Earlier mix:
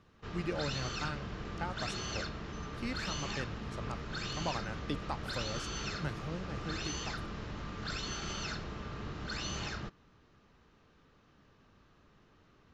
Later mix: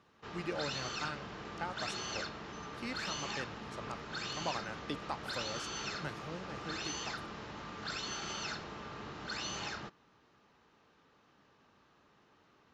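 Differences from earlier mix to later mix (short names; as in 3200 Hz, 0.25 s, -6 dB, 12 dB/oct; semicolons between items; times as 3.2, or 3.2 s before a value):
background: add bell 860 Hz +4.5 dB 0.35 oct; master: add HPF 290 Hz 6 dB/oct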